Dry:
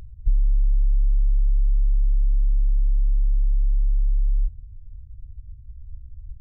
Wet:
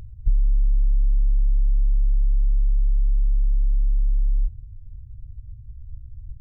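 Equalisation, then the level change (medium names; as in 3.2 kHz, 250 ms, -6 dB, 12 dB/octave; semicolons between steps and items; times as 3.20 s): peaking EQ 120 Hz +7.5 dB 0.77 oct; 0.0 dB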